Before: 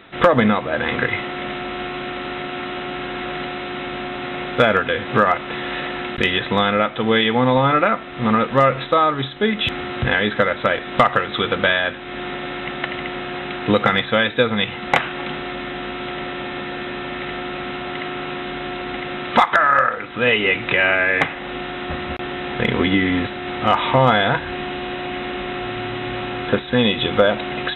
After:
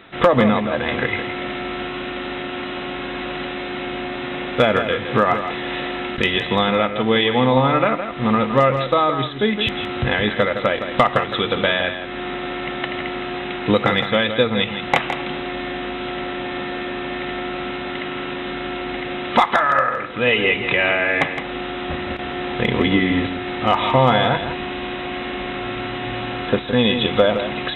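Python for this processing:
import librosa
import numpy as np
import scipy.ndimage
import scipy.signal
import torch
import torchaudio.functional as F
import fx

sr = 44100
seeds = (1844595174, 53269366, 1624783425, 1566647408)

p1 = fx.dynamic_eq(x, sr, hz=1500.0, q=3.6, threshold_db=-35.0, ratio=4.0, max_db=-6)
y = p1 + fx.echo_single(p1, sr, ms=164, db=-9.0, dry=0)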